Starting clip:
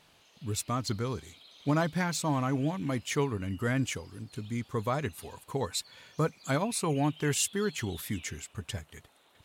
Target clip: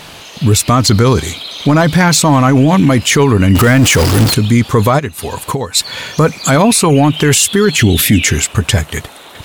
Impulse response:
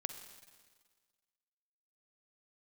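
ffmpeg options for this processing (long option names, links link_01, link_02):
-filter_complex "[0:a]asettb=1/sr,asplit=3[link_01][link_02][link_03];[link_01]atrim=end=3.554[link_04];[link_02]atrim=start=3.55:end=4.34,asetpts=PTS-STARTPTS,afade=type=in:duration=0.004:curve=qsin,afade=type=out:start_time=0.786:duration=0.004:curve=qsin,aeval=exprs='val(0)+0.5*0.0141*sgn(val(0))':channel_layout=same[link_05];[link_03]atrim=start=4.336[link_06];[link_04][link_05]acrossfade=duration=0.004:curve1=hsin:curve2=qsin[link_07];[link_07][link_06]acrossfade=duration=0.004:curve1=qsin:curve2=hsin,asplit=3[link_08][link_09][link_10];[link_08]afade=type=out:start_time=4.98:duration=0.02[link_11];[link_09]acompressor=threshold=-44dB:ratio=12,afade=type=in:start_time=4.98:duration=0.02,afade=type=out:start_time=5.75:duration=0.02[link_12];[link_10]afade=type=in:start_time=5.75:duration=0.02[link_13];[link_11][link_12][link_13]amix=inputs=3:normalize=0,asettb=1/sr,asplit=3[link_14][link_15][link_16];[link_14]atrim=end=7.784[link_17];[link_15]atrim=start=7.78:end=8.25,asetpts=PTS-STARTPTS,afade=type=in:duration=0.004:curve=qsin,afade=type=out:start_time=0.466:duration=0.004:curve=qsin,equalizer=frequency=100:width_type=o:width=0.67:gain=4,equalizer=frequency=250:width_type=o:width=0.67:gain=7,equalizer=frequency=1000:width_type=o:width=0.67:gain=-11,equalizer=frequency=2500:width_type=o:width=0.67:gain=6[link_18];[link_16]atrim=start=8.246[link_19];[link_17][link_18]acrossfade=duration=0.004:curve1=hsin:curve2=qsin[link_20];[link_20][link_19]acrossfade=duration=0.004:curve1=qsin:curve2=hsin,asoftclip=type=tanh:threshold=-18dB,alimiter=level_in=30dB:limit=-1dB:release=50:level=0:latency=1,volume=-1dB"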